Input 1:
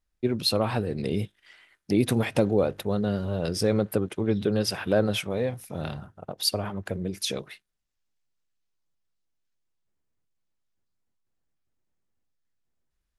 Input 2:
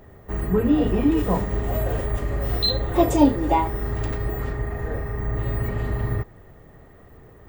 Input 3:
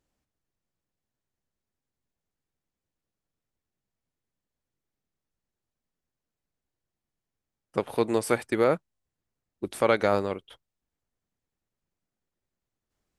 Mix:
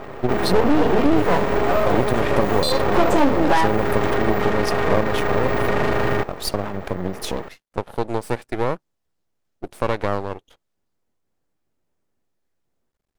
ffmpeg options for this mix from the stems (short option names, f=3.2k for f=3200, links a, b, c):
-filter_complex "[0:a]volume=2.5dB[a];[1:a]asplit=2[b][c];[c]highpass=f=720:p=1,volume=25dB,asoftclip=type=tanh:threshold=-3.5dB[d];[b][d]amix=inputs=2:normalize=0,lowpass=f=2.3k:p=1,volume=-6dB,volume=-0.5dB[e];[2:a]volume=-2dB[f];[a][e][f]amix=inputs=3:normalize=0,equalizer=f=470:t=o:w=2.9:g=7.5,aeval=exprs='max(val(0),0)':c=same,acompressor=threshold=-15dB:ratio=2"